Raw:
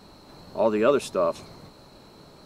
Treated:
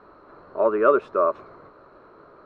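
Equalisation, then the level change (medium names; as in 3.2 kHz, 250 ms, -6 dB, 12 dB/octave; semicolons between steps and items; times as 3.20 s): resonant low-pass 1.3 kHz, resonance Q 2.8; resonant low shelf 280 Hz -8 dB, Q 1.5; peaking EQ 840 Hz -8.5 dB 0.41 oct; 0.0 dB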